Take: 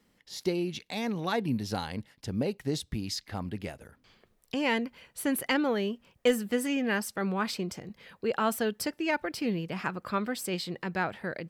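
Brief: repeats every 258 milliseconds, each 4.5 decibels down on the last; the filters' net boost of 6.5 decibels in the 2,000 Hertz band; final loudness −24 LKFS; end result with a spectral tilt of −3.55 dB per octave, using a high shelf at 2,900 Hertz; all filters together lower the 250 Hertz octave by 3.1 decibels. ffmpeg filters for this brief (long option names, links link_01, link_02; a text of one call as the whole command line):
ffmpeg -i in.wav -af "equalizer=frequency=250:width_type=o:gain=-4,equalizer=frequency=2000:width_type=o:gain=5.5,highshelf=frequency=2900:gain=7,aecho=1:1:258|516|774|1032|1290|1548|1806|2064|2322:0.596|0.357|0.214|0.129|0.0772|0.0463|0.0278|0.0167|0.01,volume=3.5dB" out.wav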